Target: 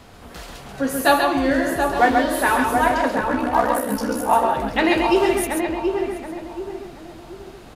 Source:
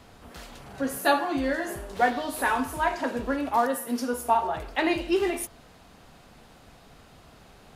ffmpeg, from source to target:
-filter_complex "[0:a]asplit=2[a][b];[b]aecho=0:1:135:0.596[c];[a][c]amix=inputs=2:normalize=0,asettb=1/sr,asplit=3[d][e][f];[d]atrim=end=3.154[g];[e]atrim=start=3.15:end=4.33,asetpts=PTS-STARTPTS,afade=t=in:d=0.004:c=qsin,afade=t=out:st=1.176:d=0.004:c=qsin,aeval=exprs='val(0)*sin(2*PI*32*n/s)':c=same[h];[f]atrim=start=4.326[i];[g][h]acrossfade=d=0.004:c1=hsin:c2=qsin[j];[j][i]acrossfade=d=0.004:c1=qsin:c2=hsin,asplit=2[k][l];[l]adelay=728,lowpass=f=1.3k:p=1,volume=-4dB,asplit=2[m][n];[n]adelay=728,lowpass=f=1.3k:p=1,volume=0.39,asplit=2[o][p];[p]adelay=728,lowpass=f=1.3k:p=1,volume=0.39,asplit=2[q][r];[r]adelay=728,lowpass=f=1.3k:p=1,volume=0.39,asplit=2[s][t];[t]adelay=728,lowpass=f=1.3k:p=1,volume=0.39[u];[m][o][q][s][u]amix=inputs=5:normalize=0[v];[k][v]amix=inputs=2:normalize=0,volume=6dB"

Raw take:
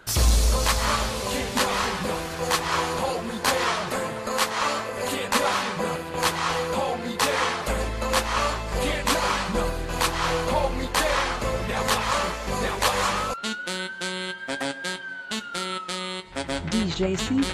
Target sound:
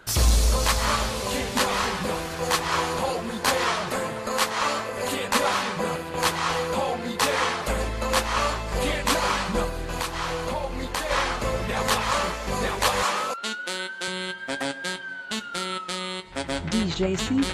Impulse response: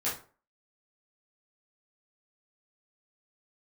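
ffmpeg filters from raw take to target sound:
-filter_complex "[0:a]asettb=1/sr,asplit=3[a][b][c];[a]atrim=end=9.644[d];[b]atrim=start=9.64:end=11.11,asetpts=PTS-STARTPTS,afade=t=in:d=0.004:c=qsin,afade=t=out:st=1.466:d=0.004:c=qsin,acompressor=threshold=-25dB:ratio=6[e];[c]atrim=start=11.106[f];[d][e]acrossfade=d=0.004:c1=hsin:c2=qsin[g];[g][f]acrossfade=d=0.004:c1=qsin:c2=hsin,asettb=1/sr,asplit=3[h][i][j];[h]atrim=end=13.034[k];[i]atrim=start=13.03:end=14.08,asetpts=PTS-STARTPTS,afade=t=in:d=0.004:c=qsin,afade=t=out:st=1.046:d=0.004:c=qsin,highpass=280[l];[j]atrim=start=14.076[m];[k][l]acrossfade=d=0.004:c1=hsin:c2=qsin[n];[n][m]acrossfade=d=0.004:c1=qsin:c2=hsin"

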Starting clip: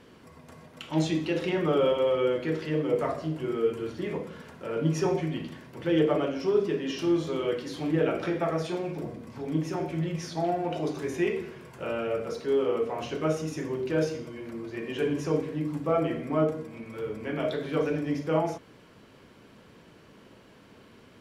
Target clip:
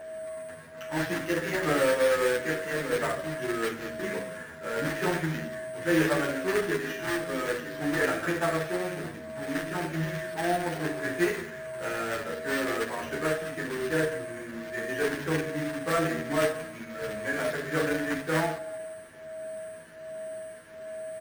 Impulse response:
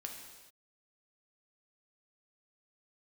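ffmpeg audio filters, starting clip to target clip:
-filter_complex "[0:a]acrossover=split=120|2600[a][b][c];[c]acompressor=threshold=-56dB:ratio=6[d];[a][b][d]amix=inputs=3:normalize=0,acrusher=bits=2:mode=log:mix=0:aa=0.000001,asettb=1/sr,asplit=3[e][f][g];[e]atrim=end=13.954[h];[f]atrim=start=13.95:end=14.57,asetpts=PTS-STARTPTS,afade=t=in:d=0.004:c=qsin,afade=t=out:st=0.616:d=0.004:c=qsin,highshelf=f=4.4k:g=-6[i];[g]atrim=start=14.566[j];[h][i]acrossfade=d=0.004:c1=hsin:c2=qsin[k];[k][j]acrossfade=d=0.004:c1=qsin:c2=hsin,aecho=1:1:177|354|531|708:0.0708|0.0404|0.023|0.0131,asplit=2[l][m];[1:a]atrim=start_sample=2205,adelay=34[n];[m][n]afir=irnorm=-1:irlink=0,volume=-12.5dB[o];[l][o]amix=inputs=2:normalize=0,aeval=exprs='val(0)+0.0178*sin(2*PI*640*n/s)':c=same,acrusher=samples=5:mix=1:aa=0.000001,equalizer=f=1.7k:w=2.4:g=14.5,asplit=2[p][q];[q]adelay=10,afreqshift=-1.3[r];[p][r]amix=inputs=2:normalize=1"

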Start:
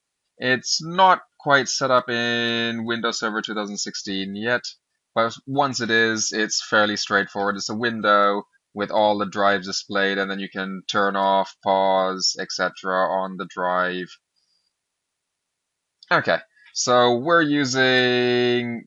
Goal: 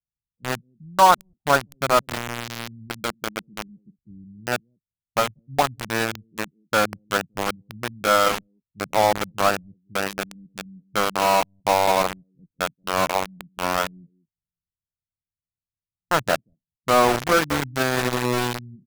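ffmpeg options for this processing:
-filter_complex "[0:a]lowpass=f=3.9k:w=0.5412,lowpass=f=3.9k:w=1.3066,highshelf=f=1.7k:t=q:w=1.5:g=-11.5,asplit=2[a][b];[b]adelay=190,highpass=300,lowpass=3.4k,asoftclip=type=hard:threshold=-9.5dB,volume=-10dB[c];[a][c]amix=inputs=2:normalize=0,acrossover=split=150[d][e];[e]aeval=exprs='val(0)*gte(abs(val(0)),0.168)':c=same[f];[d][f]amix=inputs=2:normalize=0,volume=-1dB"

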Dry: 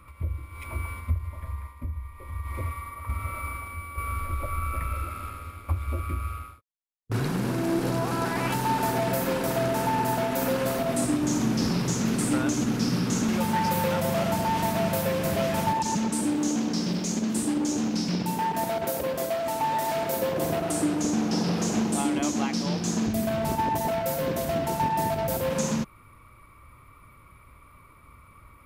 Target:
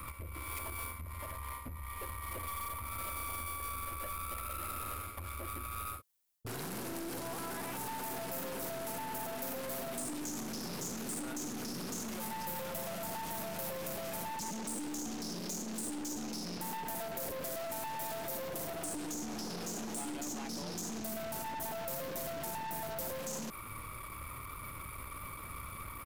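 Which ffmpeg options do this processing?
-filter_complex "[0:a]adynamicequalizer=threshold=0.00355:dfrequency=120:dqfactor=6.3:tfrequency=120:tqfactor=6.3:attack=5:release=100:ratio=0.375:range=3:mode=cutabove:tftype=bell,areverse,acompressor=threshold=-35dB:ratio=6,areverse,alimiter=level_in=9.5dB:limit=-24dB:level=0:latency=1:release=46,volume=-9.5dB,acrossover=split=290|1200|8000[a][b][c][d];[a]acompressor=threshold=-53dB:ratio=4[e];[b]acompressor=threshold=-46dB:ratio=4[f];[c]acompressor=threshold=-55dB:ratio=4[g];[d]acompressor=threshold=-57dB:ratio=4[h];[e][f][g][h]amix=inputs=4:normalize=0,atempo=1.1,aeval=exprs='(tanh(251*val(0)+0.45)-tanh(0.45))/251':c=same,crystalizer=i=1.5:c=0,volume=10dB"

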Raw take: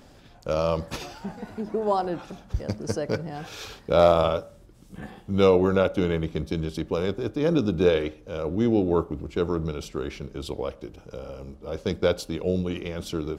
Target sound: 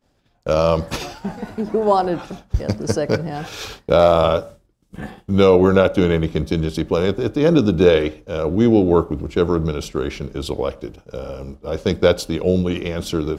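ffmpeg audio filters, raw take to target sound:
-af "agate=range=-33dB:threshold=-38dB:ratio=3:detection=peak,alimiter=level_in=9dB:limit=-1dB:release=50:level=0:latency=1,volume=-1dB"

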